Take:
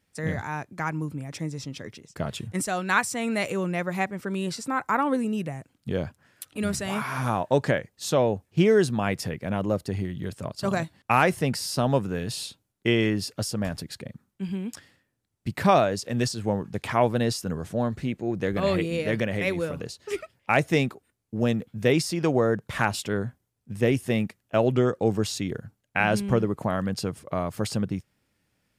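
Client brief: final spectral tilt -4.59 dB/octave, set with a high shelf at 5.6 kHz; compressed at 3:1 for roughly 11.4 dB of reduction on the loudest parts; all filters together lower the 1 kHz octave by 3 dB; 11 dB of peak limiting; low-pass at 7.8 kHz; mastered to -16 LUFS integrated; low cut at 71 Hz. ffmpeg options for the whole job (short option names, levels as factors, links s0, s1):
-af "highpass=71,lowpass=7800,equalizer=f=1000:t=o:g=-4.5,highshelf=f=5600:g=8,acompressor=threshold=0.0251:ratio=3,volume=10,alimiter=limit=0.631:level=0:latency=1"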